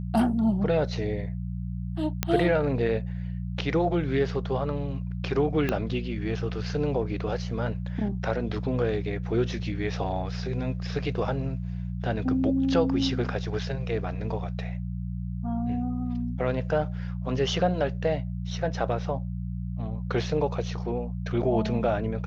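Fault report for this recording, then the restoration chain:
mains hum 60 Hz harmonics 3 −32 dBFS
0:02.23: click −8 dBFS
0:05.69: click −13 dBFS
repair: click removal
hum removal 60 Hz, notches 3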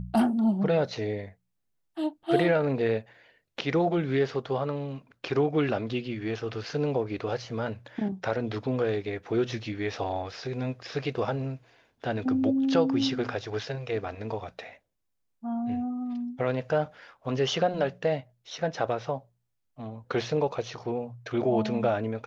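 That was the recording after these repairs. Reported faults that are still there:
0:05.69: click

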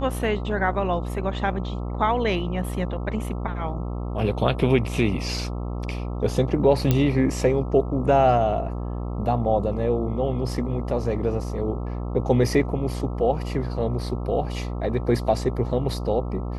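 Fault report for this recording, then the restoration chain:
mains buzz 60 Hz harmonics 22 −29 dBFS
0:06.91: click −7 dBFS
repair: click removal
hum removal 60 Hz, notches 22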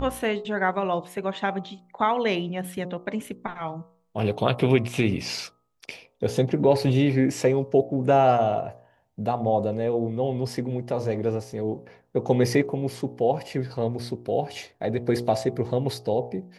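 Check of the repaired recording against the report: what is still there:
none of them is left

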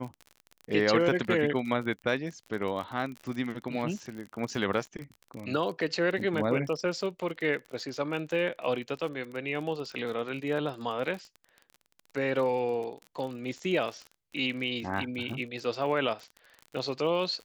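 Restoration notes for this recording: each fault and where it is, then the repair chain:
surface crackle 38 per second −36 dBFS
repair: click removal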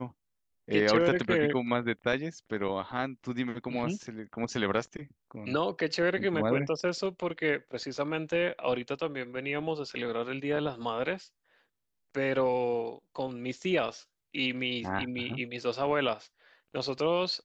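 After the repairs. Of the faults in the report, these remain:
none of them is left

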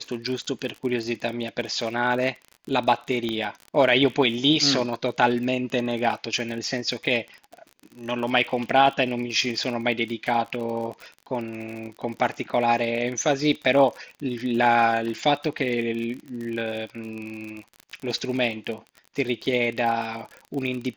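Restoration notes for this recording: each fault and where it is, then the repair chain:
surface crackle 42 per second −31 dBFS
0:03.29: click −16 dBFS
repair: click removal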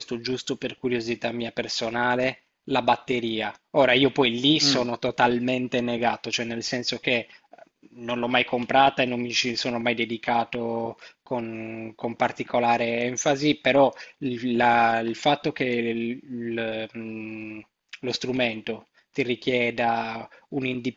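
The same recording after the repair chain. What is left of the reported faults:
0:03.29: click

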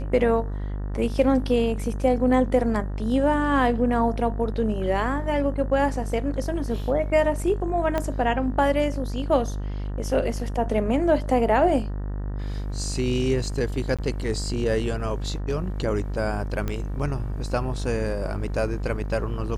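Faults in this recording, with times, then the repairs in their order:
mains buzz 50 Hz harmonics 38 −29 dBFS
0:07.98: click −12 dBFS
0:13.97–0:13.99: drop-out 16 ms
0:16.68: click −15 dBFS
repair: click removal
hum removal 50 Hz, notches 38
repair the gap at 0:13.97, 16 ms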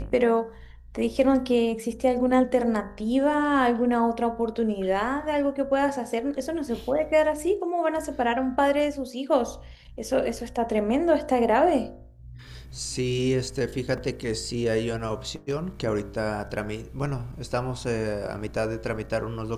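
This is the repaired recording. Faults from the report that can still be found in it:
0:07.98: click

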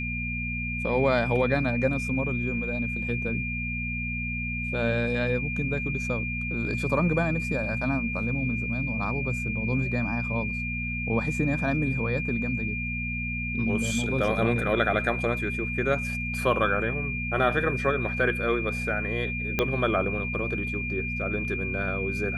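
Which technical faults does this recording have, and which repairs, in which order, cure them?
mains hum 60 Hz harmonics 4 −33 dBFS
whistle 2,400 Hz −31 dBFS
0:19.59: click −10 dBFS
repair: click removal
hum removal 60 Hz, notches 4
notch filter 2,400 Hz, Q 30

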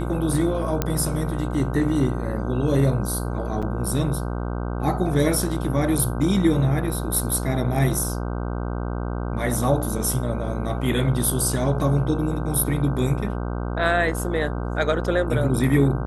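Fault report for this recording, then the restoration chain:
mains buzz 60 Hz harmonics 26 −27 dBFS
0:00.82: click −7 dBFS
0:03.62–0:03.63: drop-out 6 ms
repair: click removal
hum removal 60 Hz, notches 26
repair the gap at 0:03.62, 6 ms

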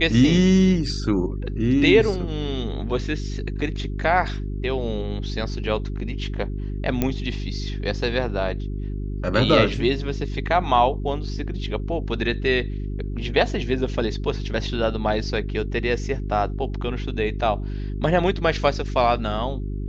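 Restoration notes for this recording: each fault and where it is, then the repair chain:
mains hum 50 Hz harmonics 8 −28 dBFS
0:07.02: click −8 dBFS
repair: click removal
hum removal 50 Hz, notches 8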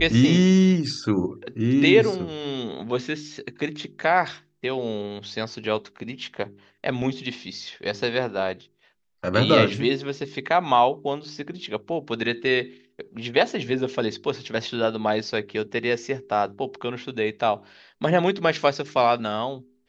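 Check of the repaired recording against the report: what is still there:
none of them is left

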